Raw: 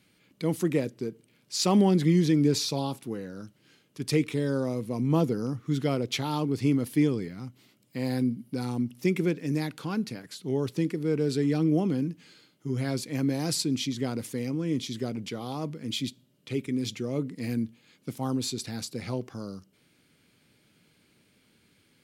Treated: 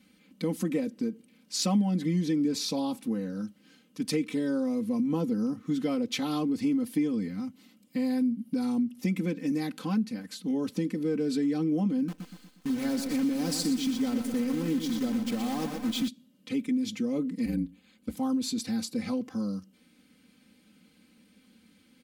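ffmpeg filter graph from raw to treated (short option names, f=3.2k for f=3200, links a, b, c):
-filter_complex "[0:a]asettb=1/sr,asplit=3[a][b][c];[a]atrim=end=12.084[d];[b]atrim=start=12.08:end=16.08,asetpts=PTS-STARTPTS,afade=t=in:d=0.004:c=qsin,afade=t=out:st=3.996:d=0.004:c=qsin,acrusher=bits=7:dc=4:mix=0:aa=0.000001,aecho=1:1:120|240|360|480|600|720:0.398|0.191|0.0917|0.044|0.0211|0.0101,atrim=end_sample=176400[e];[c]atrim=start=16.076[f];[d][e]acrossfade=d=0.004:c1=hsin:c2=qsin[g];[g][f]acrossfade=d=0.004:c1=qsin:c2=hsin,asettb=1/sr,asplit=3[h][i][j];[h]atrim=end=17.454[k];[i]atrim=start=17.45:end=18.17,asetpts=PTS-STARTPTS,afade=t=in:d=0.004:c=qsin,afade=t=out:st=0.716:d=0.004:c=qsin,equalizer=f=5.6k:t=o:w=0.35:g=-6.5,aeval=exprs='val(0)*sin(2*PI*50*n/s)':c=same[l];[j]atrim=start=18.166[m];[k][l]acrossfade=d=0.004:c1=hsin:c2=qsin[n];[n][m]acrossfade=d=0.004:c1=qsin:c2=hsin,equalizer=f=210:t=o:w=0.68:g=8.5,aecho=1:1:3.9:0.95,acompressor=threshold=-24dB:ratio=3,volume=-2.5dB"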